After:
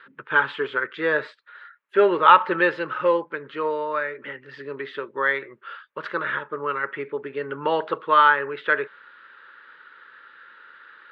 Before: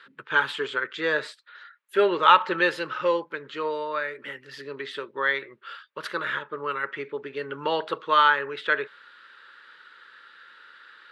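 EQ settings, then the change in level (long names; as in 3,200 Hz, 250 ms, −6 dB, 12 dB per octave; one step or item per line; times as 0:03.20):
low-pass filter 2,200 Hz 12 dB per octave
+3.5 dB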